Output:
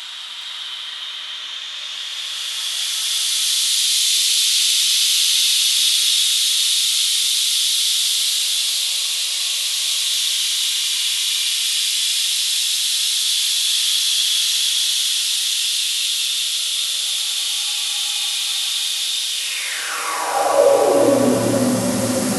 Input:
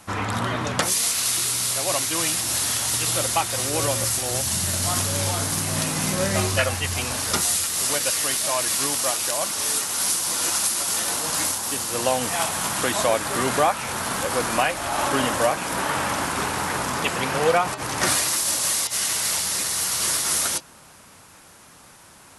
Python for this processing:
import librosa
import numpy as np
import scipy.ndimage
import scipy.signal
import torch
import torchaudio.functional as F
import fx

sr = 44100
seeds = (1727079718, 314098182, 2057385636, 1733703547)

p1 = fx.tilt_eq(x, sr, slope=-2.5)
p2 = fx.over_compress(p1, sr, threshold_db=-33.0, ratio=-1.0)
p3 = p1 + (p2 * 10.0 ** (3.0 / 20.0))
p4 = fx.paulstretch(p3, sr, seeds[0], factor=5.9, window_s=0.5, from_s=0.34)
p5 = fx.filter_sweep_highpass(p4, sr, from_hz=3400.0, to_hz=220.0, start_s=19.3, end_s=21.33, q=4.5)
y = p5 + fx.echo_single(p5, sr, ms=415, db=-4.5, dry=0)